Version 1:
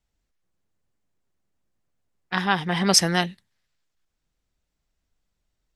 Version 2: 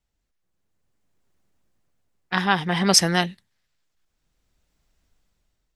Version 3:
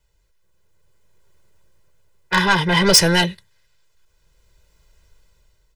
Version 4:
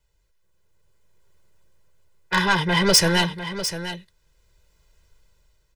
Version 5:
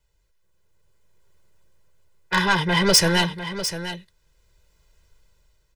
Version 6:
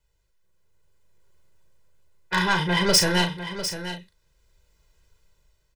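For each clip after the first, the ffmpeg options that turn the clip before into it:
-af "dynaudnorm=f=460:g=5:m=4.22,volume=0.891"
-af "asoftclip=type=tanh:threshold=0.133,aecho=1:1:2:0.97,volume=2.51"
-af "aecho=1:1:700:0.282,volume=0.668"
-af anull
-filter_complex "[0:a]asplit=2[s0][s1];[s1]adelay=39,volume=0.447[s2];[s0][s2]amix=inputs=2:normalize=0,volume=0.708"

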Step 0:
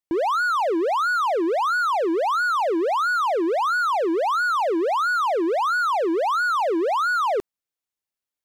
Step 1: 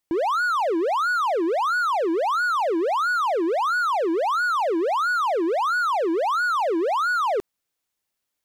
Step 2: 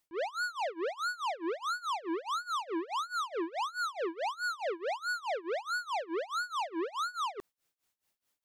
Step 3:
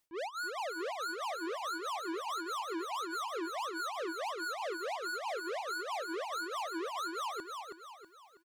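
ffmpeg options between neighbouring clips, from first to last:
-af "alimiter=level_in=1.26:limit=0.0631:level=0:latency=1,volume=0.794,volume=2.66"
-af "asoftclip=type=tanh:threshold=0.0211,tremolo=f=4.7:d=0.92,volume=1.41"
-filter_complex "[0:a]asoftclip=type=tanh:threshold=0.0158,asplit=2[s0][s1];[s1]aecho=0:1:323|646|969|1292|1615:0.562|0.236|0.0992|0.0417|0.0175[s2];[s0][s2]amix=inputs=2:normalize=0"

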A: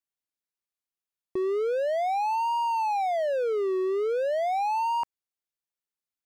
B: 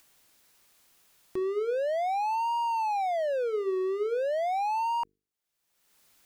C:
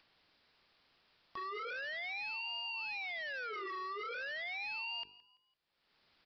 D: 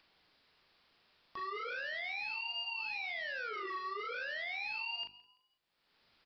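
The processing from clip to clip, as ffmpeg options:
-af "bandreject=f=50:t=h:w=6,bandreject=f=100:t=h:w=6,bandreject=f=150:t=h:w=6,bandreject=f=200:t=h:w=6,bandreject=f=250:t=h:w=6,bandreject=f=300:t=h:w=6,bandreject=f=350:t=h:w=6,bandreject=f=400:t=h:w=6,bandreject=f=450:t=h:w=6,acompressor=mode=upward:threshold=0.0141:ratio=2.5,volume=0.794"
-filter_complex "[0:a]aresample=11025,aeval=exprs='0.0188*(abs(mod(val(0)/0.0188+3,4)-2)-1)':c=same,aresample=44100,asplit=4[s0][s1][s2][s3];[s1]adelay=168,afreqshift=33,volume=0.1[s4];[s2]adelay=336,afreqshift=66,volume=0.0372[s5];[s3]adelay=504,afreqshift=99,volume=0.0136[s6];[s0][s4][s5][s6]amix=inputs=4:normalize=0,volume=0.75"
-filter_complex "[0:a]asplit=2[s0][s1];[s1]adelay=39,volume=0.562[s2];[s0][s2]amix=inputs=2:normalize=0"

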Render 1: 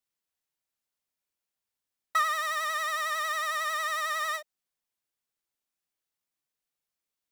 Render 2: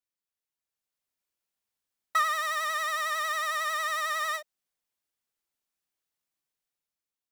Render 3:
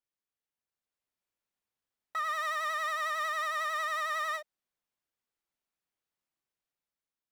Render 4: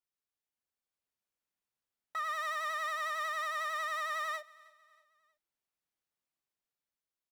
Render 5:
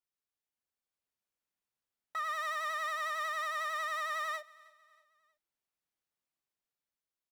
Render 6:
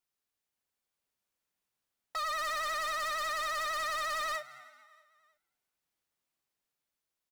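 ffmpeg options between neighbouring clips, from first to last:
-af "dynaudnorm=f=240:g=7:m=2.24,volume=0.473"
-af "highshelf=f=3800:g=-9,alimiter=level_in=1.26:limit=0.0631:level=0:latency=1:release=136,volume=0.794"
-af "aecho=1:1:317|634|951:0.0708|0.0304|0.0131,volume=0.708"
-af anull
-filter_complex "[0:a]aeval=exprs='0.02*(abs(mod(val(0)/0.02+3,4)-2)-1)':c=same,asplit=3[s0][s1][s2];[s1]adelay=224,afreqshift=120,volume=0.0794[s3];[s2]adelay=448,afreqshift=240,volume=0.0279[s4];[s0][s3][s4]amix=inputs=3:normalize=0,volume=1.68"

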